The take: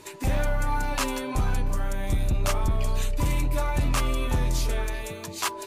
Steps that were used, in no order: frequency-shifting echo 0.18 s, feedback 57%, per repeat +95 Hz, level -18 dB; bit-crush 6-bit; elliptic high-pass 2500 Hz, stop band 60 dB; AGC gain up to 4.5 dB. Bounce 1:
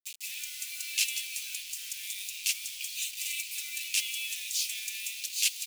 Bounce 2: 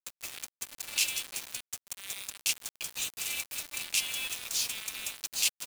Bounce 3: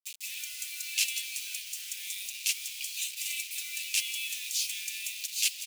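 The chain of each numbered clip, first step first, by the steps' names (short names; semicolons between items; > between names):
frequency-shifting echo > AGC > bit-crush > elliptic high-pass; AGC > frequency-shifting echo > elliptic high-pass > bit-crush; AGC > bit-crush > frequency-shifting echo > elliptic high-pass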